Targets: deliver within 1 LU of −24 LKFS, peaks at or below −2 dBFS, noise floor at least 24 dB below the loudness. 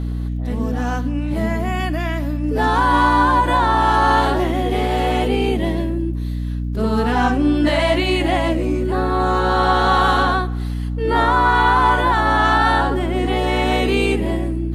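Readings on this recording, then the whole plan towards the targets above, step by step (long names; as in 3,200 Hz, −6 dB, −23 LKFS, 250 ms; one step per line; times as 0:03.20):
crackle rate 26 per second; mains hum 60 Hz; hum harmonics up to 300 Hz; level of the hum −20 dBFS; integrated loudness −18.0 LKFS; sample peak −3.5 dBFS; target loudness −24.0 LKFS
→ click removal
mains-hum notches 60/120/180/240/300 Hz
level −6 dB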